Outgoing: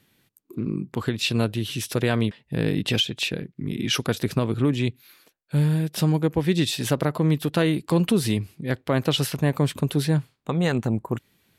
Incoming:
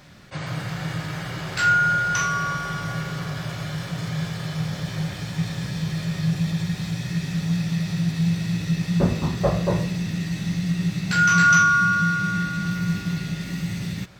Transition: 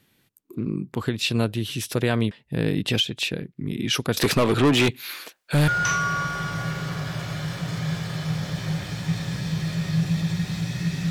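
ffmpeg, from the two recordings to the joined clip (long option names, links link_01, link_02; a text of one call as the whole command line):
ffmpeg -i cue0.wav -i cue1.wav -filter_complex "[0:a]asettb=1/sr,asplit=3[link_01][link_02][link_03];[link_01]atrim=end=4.174[link_04];[link_02]atrim=start=4.17:end=5.68,asetpts=PTS-STARTPTS,afade=type=in:duration=0.004:curve=qsin,afade=type=out:start_time=1.506:duration=0.004:curve=qsin,asplit=2[link_05][link_06];[link_06]highpass=frequency=720:poles=1,volume=26dB,asoftclip=type=tanh:threshold=-10.5dB[link_07];[link_05][link_07]amix=inputs=2:normalize=0,lowpass=frequency=6000:poles=1,volume=-6dB[link_08];[link_03]atrim=start=5.676[link_09];[link_04][link_08]acrossfade=duration=0.004:curve1=hsin:curve2=qsin[link_10];[link_10][link_09]acrossfade=duration=0.004:curve1=qsin:curve2=hsin,apad=whole_dur=11.1,atrim=end=11.1,atrim=end=5.682[link_11];[1:a]atrim=start=1.978:end=7.4[link_12];[link_11][link_12]acrossfade=duration=0.004:curve1=hsin:curve2=hsin" out.wav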